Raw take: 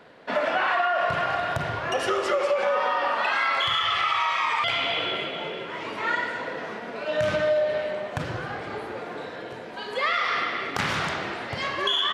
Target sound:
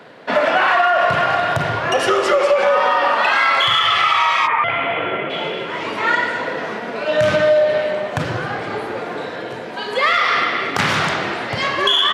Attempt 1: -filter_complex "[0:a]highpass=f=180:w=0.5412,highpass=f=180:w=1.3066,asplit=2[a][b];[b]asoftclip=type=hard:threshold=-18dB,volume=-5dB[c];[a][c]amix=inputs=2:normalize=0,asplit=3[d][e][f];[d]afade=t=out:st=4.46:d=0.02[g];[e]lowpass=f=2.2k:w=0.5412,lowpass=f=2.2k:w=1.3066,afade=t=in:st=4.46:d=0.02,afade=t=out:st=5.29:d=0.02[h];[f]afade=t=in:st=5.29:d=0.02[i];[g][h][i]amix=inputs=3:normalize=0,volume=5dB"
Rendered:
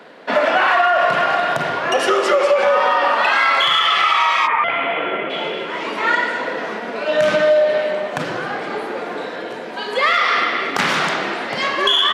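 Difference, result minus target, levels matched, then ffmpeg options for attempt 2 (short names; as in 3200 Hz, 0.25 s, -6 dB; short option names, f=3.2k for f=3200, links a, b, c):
125 Hz band -8.5 dB
-filter_complex "[0:a]highpass=f=89:w=0.5412,highpass=f=89:w=1.3066,asplit=2[a][b];[b]asoftclip=type=hard:threshold=-18dB,volume=-5dB[c];[a][c]amix=inputs=2:normalize=0,asplit=3[d][e][f];[d]afade=t=out:st=4.46:d=0.02[g];[e]lowpass=f=2.2k:w=0.5412,lowpass=f=2.2k:w=1.3066,afade=t=in:st=4.46:d=0.02,afade=t=out:st=5.29:d=0.02[h];[f]afade=t=in:st=5.29:d=0.02[i];[g][h][i]amix=inputs=3:normalize=0,volume=5dB"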